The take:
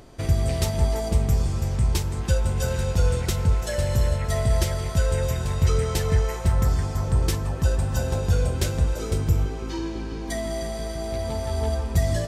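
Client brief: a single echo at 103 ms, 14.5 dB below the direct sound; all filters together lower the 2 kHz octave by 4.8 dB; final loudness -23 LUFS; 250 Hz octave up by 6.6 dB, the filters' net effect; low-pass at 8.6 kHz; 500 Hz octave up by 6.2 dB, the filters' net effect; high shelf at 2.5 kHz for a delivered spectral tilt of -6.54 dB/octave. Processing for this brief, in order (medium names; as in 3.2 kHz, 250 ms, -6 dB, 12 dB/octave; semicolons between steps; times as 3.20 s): low-pass 8.6 kHz; peaking EQ 250 Hz +8 dB; peaking EQ 500 Hz +6 dB; peaking EQ 2 kHz -8.5 dB; treble shelf 2.5 kHz +3.5 dB; delay 103 ms -14.5 dB; trim -0.5 dB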